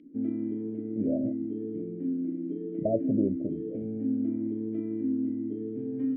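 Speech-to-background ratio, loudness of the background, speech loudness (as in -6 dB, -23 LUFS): -1.0 dB, -32.5 LUFS, -33.5 LUFS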